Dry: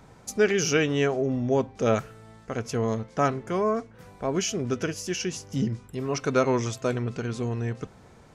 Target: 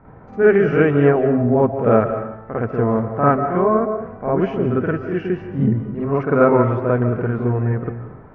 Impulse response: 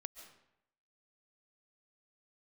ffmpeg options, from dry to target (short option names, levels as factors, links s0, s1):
-filter_complex "[0:a]lowpass=f=1700:w=0.5412,lowpass=f=1700:w=1.3066,asplit=2[s0][s1];[1:a]atrim=start_sample=2205,adelay=50[s2];[s1][s2]afir=irnorm=-1:irlink=0,volume=3.35[s3];[s0][s3]amix=inputs=2:normalize=0,volume=1.33"